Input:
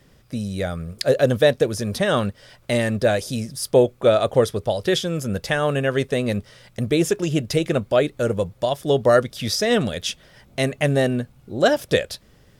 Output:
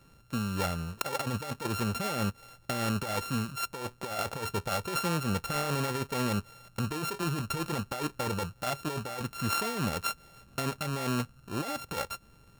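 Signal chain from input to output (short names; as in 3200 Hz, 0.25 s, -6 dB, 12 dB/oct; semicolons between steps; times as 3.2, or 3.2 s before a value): sample sorter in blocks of 32 samples; negative-ratio compressor -23 dBFS, ratio -1; gain -8.5 dB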